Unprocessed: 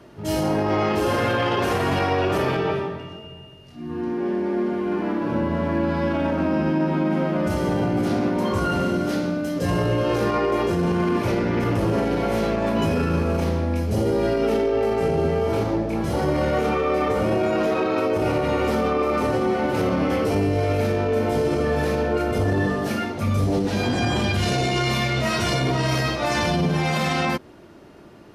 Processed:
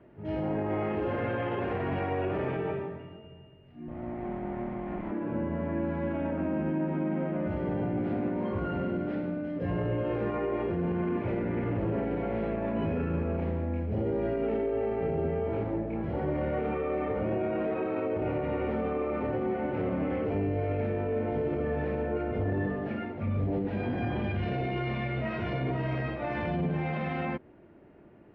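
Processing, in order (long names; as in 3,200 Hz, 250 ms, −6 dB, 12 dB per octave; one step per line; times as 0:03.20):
0:03.88–0:05.11: lower of the sound and its delayed copy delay 0.91 ms
low-pass filter 2,300 Hz 24 dB per octave
parametric band 1,200 Hz −6.5 dB 0.86 octaves
level −8 dB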